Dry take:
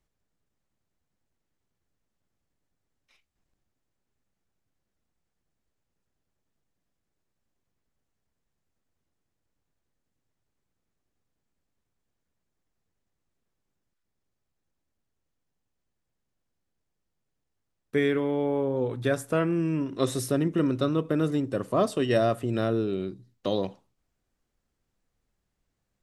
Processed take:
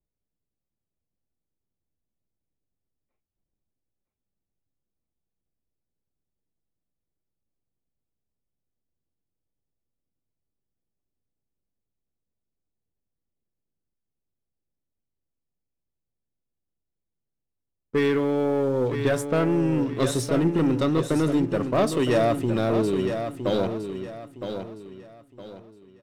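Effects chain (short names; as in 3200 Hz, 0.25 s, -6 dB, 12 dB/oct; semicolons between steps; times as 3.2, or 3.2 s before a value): low-pass opened by the level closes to 630 Hz, open at -22.5 dBFS; sample leveller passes 2; on a send: feedback echo 0.963 s, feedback 33%, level -8 dB; on the sum: gain -2.5 dB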